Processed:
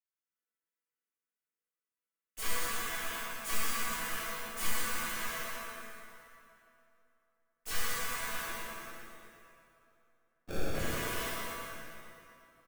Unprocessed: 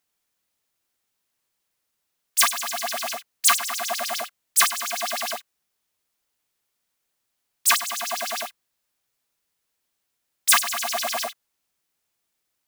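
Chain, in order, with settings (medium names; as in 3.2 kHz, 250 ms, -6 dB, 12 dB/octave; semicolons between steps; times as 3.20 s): companding laws mixed up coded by A; high-pass 260 Hz; treble shelf 2.3 kHz -9 dB; in parallel at -1 dB: peak limiter -18 dBFS, peak gain reduction 10 dB; on the sum: static phaser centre 1.8 kHz, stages 4; Chebyshev shaper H 6 -9 dB, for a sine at -7.5 dBFS; hard clipper -21.5 dBFS, distortion -5 dB; chord resonator E3 sus4, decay 0.27 s; 8.45–10.75 s: sample-rate reducer 1 kHz, jitter 0%; on a send: feedback delay 118 ms, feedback 49%, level -6 dB; on the sum: plate-style reverb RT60 2.9 s, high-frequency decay 0.75×, DRR -9 dB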